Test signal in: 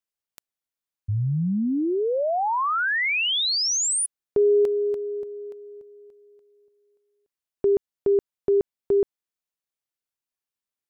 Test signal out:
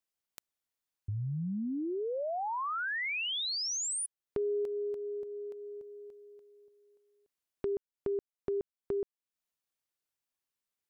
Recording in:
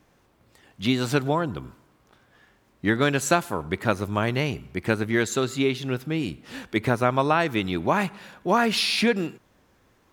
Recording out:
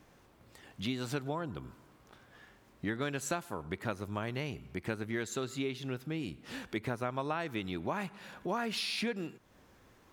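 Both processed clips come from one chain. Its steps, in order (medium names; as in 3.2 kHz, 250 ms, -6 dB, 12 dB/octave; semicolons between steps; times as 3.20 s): compression 2:1, threshold -43 dBFS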